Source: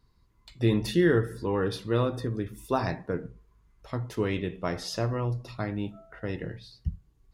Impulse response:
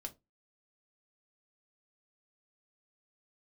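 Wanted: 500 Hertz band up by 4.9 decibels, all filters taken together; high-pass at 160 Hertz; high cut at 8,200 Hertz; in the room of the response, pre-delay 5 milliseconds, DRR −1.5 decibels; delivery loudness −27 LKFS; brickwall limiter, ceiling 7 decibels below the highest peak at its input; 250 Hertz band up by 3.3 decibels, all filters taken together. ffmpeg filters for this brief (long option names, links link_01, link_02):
-filter_complex "[0:a]highpass=160,lowpass=8200,equalizer=frequency=250:width_type=o:gain=3.5,equalizer=frequency=500:width_type=o:gain=5,alimiter=limit=-15dB:level=0:latency=1,asplit=2[link_01][link_02];[1:a]atrim=start_sample=2205,adelay=5[link_03];[link_02][link_03]afir=irnorm=-1:irlink=0,volume=5dB[link_04];[link_01][link_04]amix=inputs=2:normalize=0,volume=-2dB"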